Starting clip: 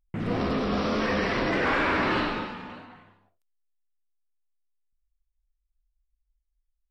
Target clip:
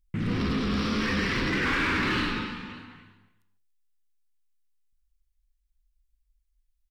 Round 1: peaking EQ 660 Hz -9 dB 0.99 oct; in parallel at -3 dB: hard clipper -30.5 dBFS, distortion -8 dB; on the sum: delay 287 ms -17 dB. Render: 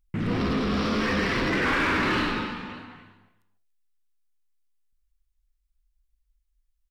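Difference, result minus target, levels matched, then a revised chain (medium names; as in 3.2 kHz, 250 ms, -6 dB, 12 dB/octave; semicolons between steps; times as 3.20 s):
500 Hz band +3.0 dB
peaking EQ 660 Hz -21 dB 0.99 oct; in parallel at -3 dB: hard clipper -30.5 dBFS, distortion -10 dB; on the sum: delay 287 ms -17 dB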